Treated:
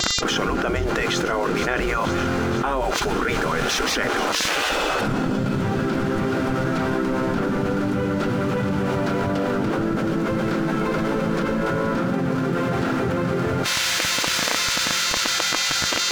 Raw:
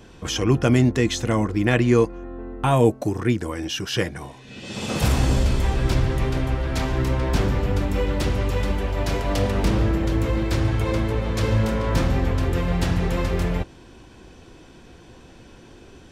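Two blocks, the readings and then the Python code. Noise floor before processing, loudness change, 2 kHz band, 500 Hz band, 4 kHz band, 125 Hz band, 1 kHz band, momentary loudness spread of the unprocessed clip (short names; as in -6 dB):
-47 dBFS, +0.5 dB, +7.0 dB, +1.5 dB, +9.0 dB, -5.5 dB, +5.5 dB, 8 LU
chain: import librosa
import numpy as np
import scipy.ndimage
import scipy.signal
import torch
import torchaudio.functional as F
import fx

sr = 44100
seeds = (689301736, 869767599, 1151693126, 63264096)

y = fx.quant_dither(x, sr, seeds[0], bits=6, dither='none')
y = fx.peak_eq(y, sr, hz=1400.0, db=13.0, octaves=0.26)
y = fx.dmg_buzz(y, sr, base_hz=400.0, harmonics=19, level_db=-44.0, tilt_db=-2, odd_only=False)
y = fx.echo_wet_highpass(y, sr, ms=473, feedback_pct=81, hz=3500.0, wet_db=-10)
y = fx.vibrato(y, sr, rate_hz=0.53, depth_cents=8.4)
y = fx.riaa(y, sr, side='playback')
y = fx.spec_gate(y, sr, threshold_db=-15, keep='weak')
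y = fx.env_flatten(y, sr, amount_pct=100)
y = y * 10.0 ** (-5.0 / 20.0)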